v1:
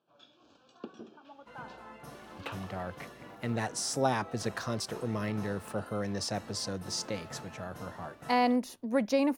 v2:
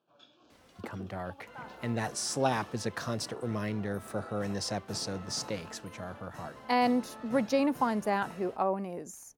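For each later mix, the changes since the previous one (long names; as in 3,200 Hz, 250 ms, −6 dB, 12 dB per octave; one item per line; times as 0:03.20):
speech: entry −1.60 s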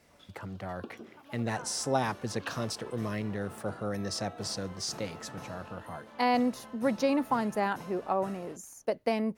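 speech: entry −0.50 s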